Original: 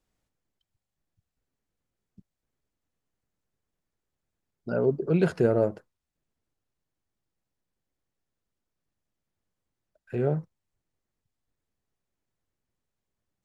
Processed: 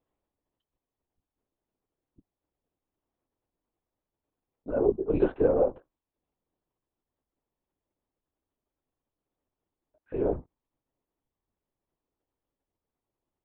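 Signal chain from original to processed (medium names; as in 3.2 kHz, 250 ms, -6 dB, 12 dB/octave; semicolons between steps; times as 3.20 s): LPC vocoder at 8 kHz whisper; high-order bell 540 Hz +9.5 dB 2.4 oct; trim -8.5 dB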